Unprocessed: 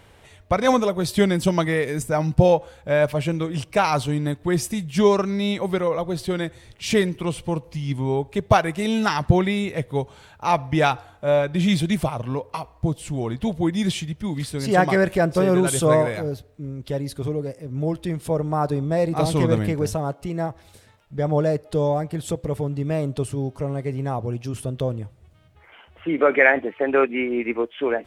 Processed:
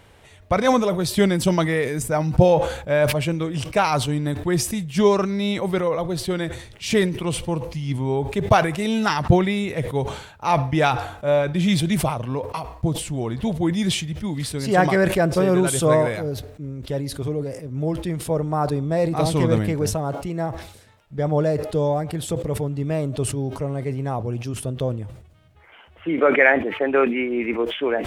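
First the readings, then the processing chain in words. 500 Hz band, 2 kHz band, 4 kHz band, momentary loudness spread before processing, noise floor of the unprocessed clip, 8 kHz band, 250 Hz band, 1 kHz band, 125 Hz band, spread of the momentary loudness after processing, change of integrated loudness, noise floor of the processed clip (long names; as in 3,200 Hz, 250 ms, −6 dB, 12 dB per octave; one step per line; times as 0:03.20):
+0.5 dB, +0.5 dB, +2.0 dB, 10 LU, −53 dBFS, +3.0 dB, +0.5 dB, +0.5 dB, +1.0 dB, 10 LU, +0.5 dB, −49 dBFS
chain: level that may fall only so fast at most 81 dB per second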